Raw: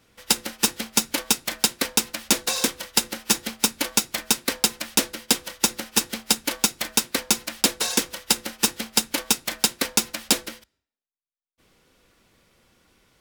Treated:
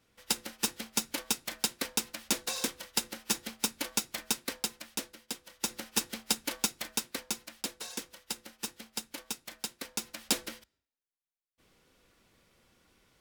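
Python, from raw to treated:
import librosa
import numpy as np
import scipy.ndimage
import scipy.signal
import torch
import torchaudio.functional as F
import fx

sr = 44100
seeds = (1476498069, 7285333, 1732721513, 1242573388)

y = fx.gain(x, sr, db=fx.line((4.3, -10.0), (5.41, -19.5), (5.77, -9.0), (6.62, -9.0), (7.7, -17.0), (9.86, -17.0), (10.51, -5.5)))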